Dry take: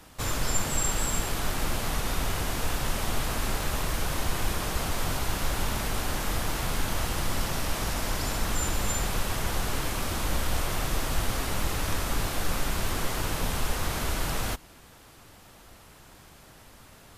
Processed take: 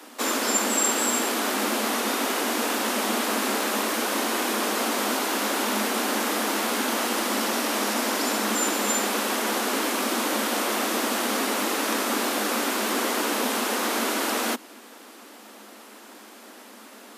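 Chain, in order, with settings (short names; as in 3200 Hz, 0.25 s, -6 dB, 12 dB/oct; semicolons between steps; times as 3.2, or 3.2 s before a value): Chebyshev high-pass 210 Hz, order 10; low shelf 380 Hz +5.5 dB; gain +7 dB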